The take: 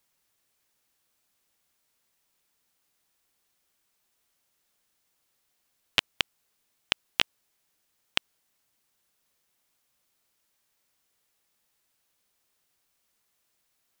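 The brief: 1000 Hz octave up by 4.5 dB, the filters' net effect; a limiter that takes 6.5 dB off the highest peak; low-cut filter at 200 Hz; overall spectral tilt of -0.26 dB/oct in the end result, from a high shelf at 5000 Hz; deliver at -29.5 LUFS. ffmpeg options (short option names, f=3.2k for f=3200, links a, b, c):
-af "highpass=200,equalizer=f=1k:t=o:g=6,highshelf=f=5k:g=-5.5,volume=8dB,alimiter=limit=-0.5dB:level=0:latency=1"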